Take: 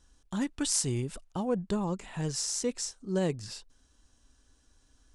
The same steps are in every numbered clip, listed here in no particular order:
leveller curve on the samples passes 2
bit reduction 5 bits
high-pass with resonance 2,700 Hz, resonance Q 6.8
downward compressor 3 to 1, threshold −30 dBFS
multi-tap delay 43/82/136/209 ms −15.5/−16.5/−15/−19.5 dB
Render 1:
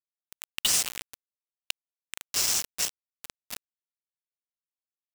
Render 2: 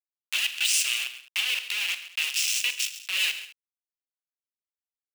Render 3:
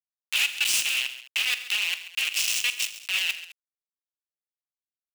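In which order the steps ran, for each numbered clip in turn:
multi-tap delay, then downward compressor, then high-pass with resonance, then bit reduction, then leveller curve on the samples
bit reduction, then downward compressor, then multi-tap delay, then leveller curve on the samples, then high-pass with resonance
downward compressor, then bit reduction, then high-pass with resonance, then leveller curve on the samples, then multi-tap delay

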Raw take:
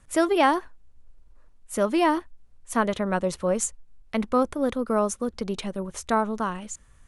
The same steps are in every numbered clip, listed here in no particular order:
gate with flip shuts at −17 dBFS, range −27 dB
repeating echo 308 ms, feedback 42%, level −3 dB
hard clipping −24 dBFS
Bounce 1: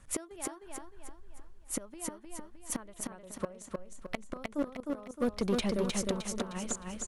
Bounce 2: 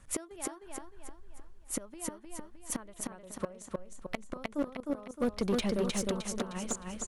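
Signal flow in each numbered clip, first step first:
gate with flip, then hard clipping, then repeating echo
gate with flip, then repeating echo, then hard clipping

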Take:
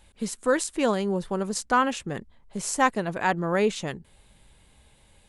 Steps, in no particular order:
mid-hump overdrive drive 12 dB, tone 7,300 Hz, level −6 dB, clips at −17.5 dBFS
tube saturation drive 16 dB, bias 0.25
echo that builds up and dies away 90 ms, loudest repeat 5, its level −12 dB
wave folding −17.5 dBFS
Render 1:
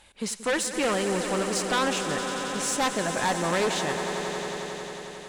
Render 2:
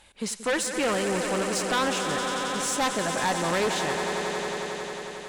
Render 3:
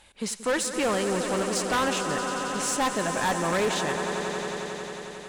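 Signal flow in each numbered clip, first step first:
wave folding, then mid-hump overdrive, then echo that builds up and dies away, then tube saturation
wave folding, then echo that builds up and dies away, then mid-hump overdrive, then tube saturation
mid-hump overdrive, then echo that builds up and dies away, then wave folding, then tube saturation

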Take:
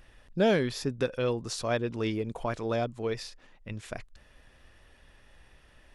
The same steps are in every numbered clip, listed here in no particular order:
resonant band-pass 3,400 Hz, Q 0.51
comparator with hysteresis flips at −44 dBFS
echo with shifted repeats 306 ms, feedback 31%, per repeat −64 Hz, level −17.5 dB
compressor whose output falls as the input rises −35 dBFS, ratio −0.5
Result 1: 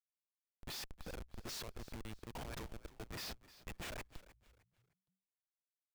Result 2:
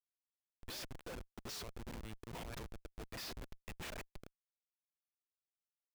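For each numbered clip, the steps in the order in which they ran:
compressor whose output falls as the input rises, then resonant band-pass, then comparator with hysteresis, then echo with shifted repeats
echo with shifted repeats, then compressor whose output falls as the input rises, then resonant band-pass, then comparator with hysteresis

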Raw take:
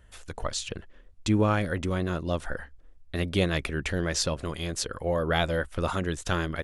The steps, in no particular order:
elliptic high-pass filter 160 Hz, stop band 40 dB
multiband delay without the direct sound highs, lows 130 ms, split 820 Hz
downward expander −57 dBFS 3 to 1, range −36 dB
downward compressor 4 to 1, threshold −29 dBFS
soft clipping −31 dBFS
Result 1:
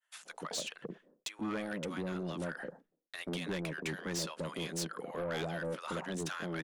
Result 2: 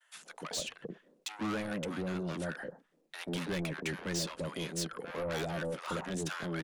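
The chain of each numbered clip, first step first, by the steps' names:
downward compressor, then elliptic high-pass filter, then downward expander, then multiband delay without the direct sound, then soft clipping
downward expander, then elliptic high-pass filter, then soft clipping, then multiband delay without the direct sound, then downward compressor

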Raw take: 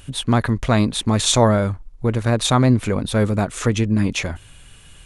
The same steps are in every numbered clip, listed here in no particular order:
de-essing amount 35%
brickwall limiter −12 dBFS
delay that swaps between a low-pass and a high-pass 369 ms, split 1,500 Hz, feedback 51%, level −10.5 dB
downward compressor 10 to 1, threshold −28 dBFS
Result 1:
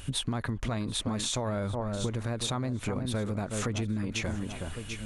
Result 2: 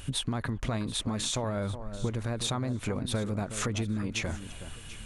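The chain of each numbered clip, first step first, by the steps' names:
delay that swaps between a low-pass and a high-pass, then brickwall limiter, then downward compressor, then de-essing
brickwall limiter, then de-essing, then downward compressor, then delay that swaps between a low-pass and a high-pass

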